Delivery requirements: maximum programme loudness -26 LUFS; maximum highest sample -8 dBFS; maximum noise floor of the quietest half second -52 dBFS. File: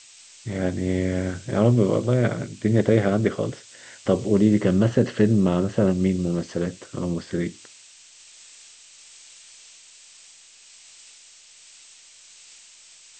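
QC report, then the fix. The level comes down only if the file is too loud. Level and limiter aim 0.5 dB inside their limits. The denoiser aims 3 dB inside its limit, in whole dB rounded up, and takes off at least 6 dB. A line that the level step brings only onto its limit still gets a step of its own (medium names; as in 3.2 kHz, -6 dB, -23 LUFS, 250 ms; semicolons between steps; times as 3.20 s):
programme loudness -22.5 LUFS: fail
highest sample -5.0 dBFS: fail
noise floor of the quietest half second -50 dBFS: fail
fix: trim -4 dB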